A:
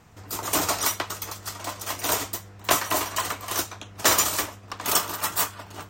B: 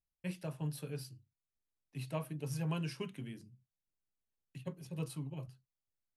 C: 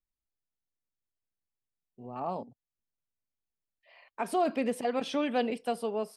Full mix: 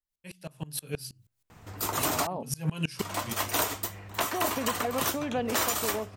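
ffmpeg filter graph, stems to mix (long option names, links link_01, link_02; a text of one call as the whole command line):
ffmpeg -i stem1.wav -i stem2.wav -i stem3.wav -filter_complex "[0:a]equalizer=frequency=6000:width_type=o:width=1:gain=-3.5,adelay=1500,volume=-9.5dB,asplit=3[link_01][link_02][link_03];[link_01]atrim=end=2.27,asetpts=PTS-STARTPTS,afade=type=out:start_time=2.266:duration=0.004:curve=hsin[link_04];[link_02]atrim=start=2.27:end=2.99,asetpts=PTS-STARTPTS,volume=0[link_05];[link_03]atrim=start=2.99,asetpts=PTS-STARTPTS,afade=type=in:duration=0.004:curve=hsin[link_06];[link_04][link_05][link_06]concat=n=3:v=0:a=1[link_07];[1:a]highshelf=frequency=2600:gain=10.5,bandreject=frequency=60:width_type=h:width=6,bandreject=frequency=120:width_type=h:width=6,bandreject=frequency=180:width_type=h:width=6,aeval=exprs='val(0)*pow(10,-25*if(lt(mod(-6.3*n/s,1),2*abs(-6.3)/1000),1-mod(-6.3*n/s,1)/(2*abs(-6.3)/1000),(mod(-6.3*n/s,1)-2*abs(-6.3)/1000)/(1-2*abs(-6.3)/1000))/20)':channel_layout=same,volume=1.5dB[link_08];[2:a]lowpass=2800,acompressor=threshold=-32dB:ratio=6,volume=-5dB,asplit=2[link_09][link_10];[link_10]apad=whole_len=272070[link_11];[link_08][link_11]sidechaincompress=threshold=-46dB:ratio=8:attack=16:release=461[link_12];[link_07][link_12][link_09]amix=inputs=3:normalize=0,dynaudnorm=framelen=110:gausssize=13:maxgain=11dB,alimiter=limit=-15.5dB:level=0:latency=1:release=304" out.wav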